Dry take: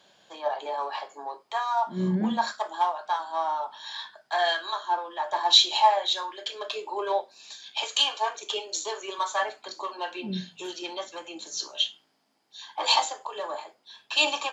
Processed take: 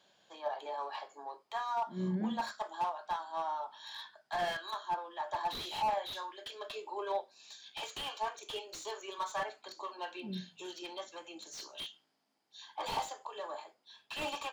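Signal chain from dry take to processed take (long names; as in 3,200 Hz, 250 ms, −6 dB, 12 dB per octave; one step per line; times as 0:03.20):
slew-rate limiting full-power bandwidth 88 Hz
level −8.5 dB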